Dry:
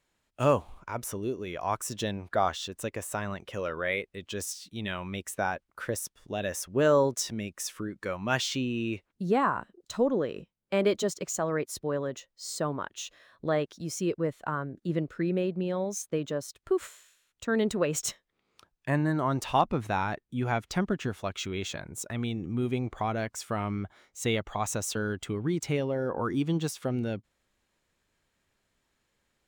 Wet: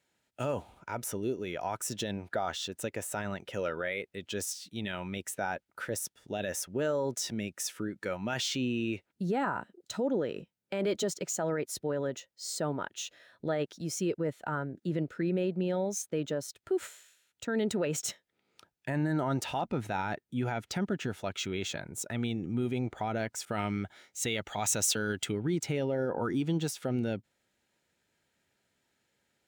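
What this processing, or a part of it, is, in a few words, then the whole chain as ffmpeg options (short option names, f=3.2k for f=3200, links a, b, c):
PA system with an anti-feedback notch: -filter_complex "[0:a]highpass=100,asuperstop=centerf=1100:order=4:qfactor=5.4,alimiter=limit=-22.5dB:level=0:latency=1:release=29,asettb=1/sr,asplit=3[a][b][c];[a]atrim=end=23.454[d];[b]atrim=start=23.45:end=25.32,asetpts=PTS-STARTPTS,afade=t=in:d=0.004:c=qsin,afade=t=out:st=1.866:d=0.004:c=qsin,adynamicequalizer=threshold=0.00316:dfrequency=1700:dqfactor=0.7:tfrequency=1700:tqfactor=0.7:attack=5:release=100:ratio=0.375:range=3.5:mode=boostabove:tftype=highshelf[e];[c]atrim=start=25.316[f];[d][e]acrossfade=d=0.004:c1=hsin:c2=qsin[g];[g][f]acrossfade=d=0.004:c1=qsin:c2=hsin"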